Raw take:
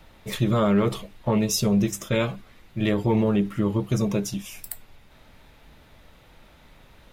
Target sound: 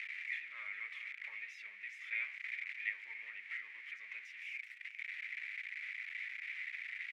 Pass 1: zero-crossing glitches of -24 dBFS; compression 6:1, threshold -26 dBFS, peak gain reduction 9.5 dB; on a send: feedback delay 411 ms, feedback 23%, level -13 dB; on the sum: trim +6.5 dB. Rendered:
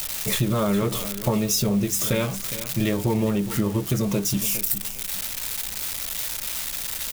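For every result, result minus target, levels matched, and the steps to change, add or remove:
2 kHz band -16.0 dB; zero-crossing glitches: distortion -7 dB
add after compression: Butterworth band-pass 2.1 kHz, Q 4.3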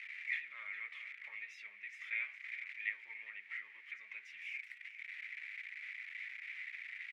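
zero-crossing glitches: distortion -7 dB
change: zero-crossing glitches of -17 dBFS

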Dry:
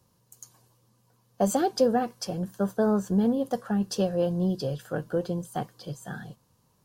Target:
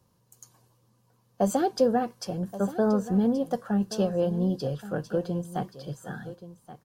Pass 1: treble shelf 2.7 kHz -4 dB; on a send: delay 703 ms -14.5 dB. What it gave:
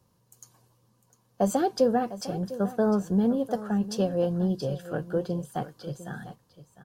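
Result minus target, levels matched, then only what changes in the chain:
echo 424 ms early
change: delay 1127 ms -14.5 dB

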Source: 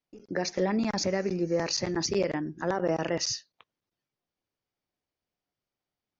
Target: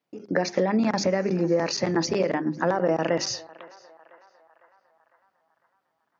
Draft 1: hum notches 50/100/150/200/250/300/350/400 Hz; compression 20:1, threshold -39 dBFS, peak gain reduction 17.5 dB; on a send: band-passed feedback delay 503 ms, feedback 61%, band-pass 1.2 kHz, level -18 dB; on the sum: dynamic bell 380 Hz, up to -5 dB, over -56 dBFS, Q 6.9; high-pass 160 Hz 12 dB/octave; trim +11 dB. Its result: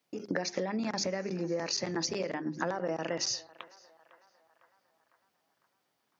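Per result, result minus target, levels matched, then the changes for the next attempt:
compression: peak gain reduction +11 dB; 8 kHz band +6.5 dB
change: compression 20:1, threshold -27.5 dBFS, peak gain reduction 7 dB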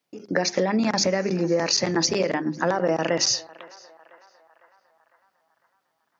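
8 kHz band +6.5 dB
add after high-pass: treble shelf 3 kHz -10.5 dB

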